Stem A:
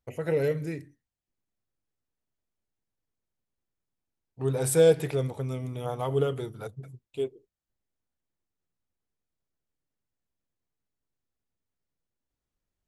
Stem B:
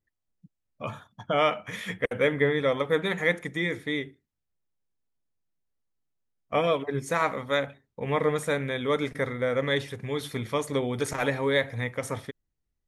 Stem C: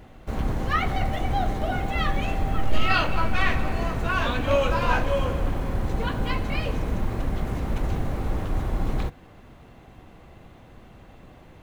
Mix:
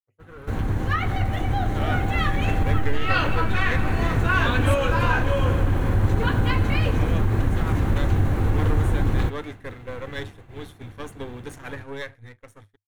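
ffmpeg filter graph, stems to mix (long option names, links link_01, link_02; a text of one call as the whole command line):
ffmpeg -i stem1.wav -i stem2.wav -i stem3.wav -filter_complex "[0:a]asoftclip=type=hard:threshold=-28dB,equalizer=frequency=1300:width=2.2:gain=8.5,volume=-12.5dB,asplit=2[link_01][link_02];[1:a]aeval=exprs='if(lt(val(0),0),0.251*val(0),val(0))':channel_layout=same,adelay=450,volume=-8dB[link_03];[2:a]acompressor=threshold=-22dB:ratio=6,adelay=200,volume=1dB[link_04];[link_02]apad=whole_len=587726[link_05];[link_03][link_05]sidechaincompress=threshold=-48dB:ratio=8:attack=16:release=1450[link_06];[link_01][link_06][link_04]amix=inputs=3:normalize=0,agate=range=-33dB:threshold=-37dB:ratio=3:detection=peak,equalizer=frequency=100:width_type=o:width=0.33:gain=12,equalizer=frequency=315:width_type=o:width=0.33:gain=4,equalizer=frequency=630:width_type=o:width=0.33:gain=-4,equalizer=frequency=1600:width_type=o:width=0.33:gain=5,equalizer=frequency=5000:width_type=o:width=0.33:gain=-5,dynaudnorm=framelen=220:gausssize=17:maxgain=4dB" out.wav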